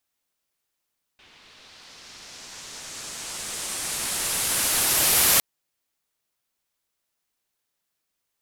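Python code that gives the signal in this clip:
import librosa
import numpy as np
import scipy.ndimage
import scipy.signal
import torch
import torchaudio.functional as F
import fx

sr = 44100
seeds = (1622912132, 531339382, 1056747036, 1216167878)

y = fx.riser_noise(sr, seeds[0], length_s=4.21, colour='white', kind='lowpass', start_hz=3100.0, end_hz=13000.0, q=1.5, swell_db=32.0, law='linear')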